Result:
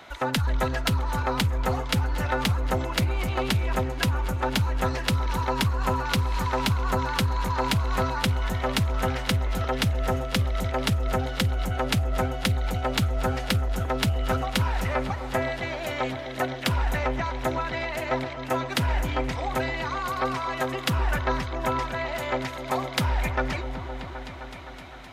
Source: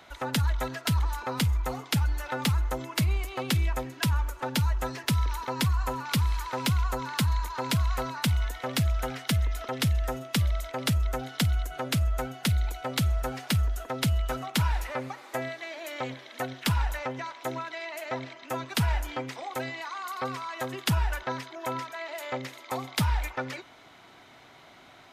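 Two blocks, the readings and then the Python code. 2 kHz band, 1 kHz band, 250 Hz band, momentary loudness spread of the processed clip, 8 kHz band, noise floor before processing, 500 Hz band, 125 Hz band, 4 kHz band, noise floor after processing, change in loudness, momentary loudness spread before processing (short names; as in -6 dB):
+5.0 dB, +5.5 dB, +3.5 dB, 4 LU, 0.0 dB, -53 dBFS, +6.5 dB, +2.0 dB, +3.0 dB, -36 dBFS, +3.0 dB, 8 LU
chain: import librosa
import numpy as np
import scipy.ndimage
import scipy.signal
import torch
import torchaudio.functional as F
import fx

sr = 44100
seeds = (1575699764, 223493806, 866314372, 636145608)

p1 = fx.bass_treble(x, sr, bass_db=-1, treble_db=-3)
p2 = fx.over_compress(p1, sr, threshold_db=-28.0, ratio=-0.5)
p3 = p1 + (p2 * 10.0 ** (2.0 / 20.0))
p4 = fx.echo_opening(p3, sr, ms=258, hz=400, octaves=1, feedback_pct=70, wet_db=-6)
p5 = fx.doppler_dist(p4, sr, depth_ms=0.15)
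y = p5 * 10.0 ** (-2.5 / 20.0)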